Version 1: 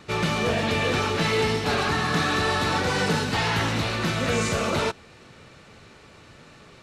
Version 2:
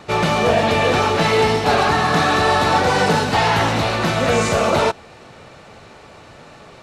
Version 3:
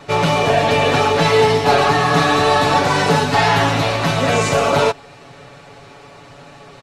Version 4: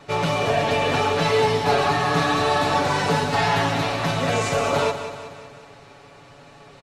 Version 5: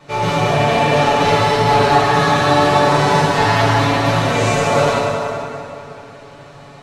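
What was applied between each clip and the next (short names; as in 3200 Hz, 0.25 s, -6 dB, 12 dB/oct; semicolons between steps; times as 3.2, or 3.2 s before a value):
bell 730 Hz +8.5 dB 1.1 oct; gain +4.5 dB
comb 7.1 ms, depth 89%; gain -1 dB
feedback echo 0.186 s, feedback 54%, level -10.5 dB; gain -6.5 dB
plate-style reverb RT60 2.7 s, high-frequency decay 0.6×, DRR -7 dB; gain -1.5 dB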